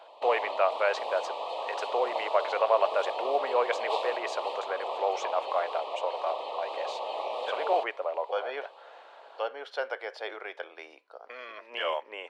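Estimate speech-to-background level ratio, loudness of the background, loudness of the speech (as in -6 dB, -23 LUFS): 3.5 dB, -35.0 LUFS, -31.5 LUFS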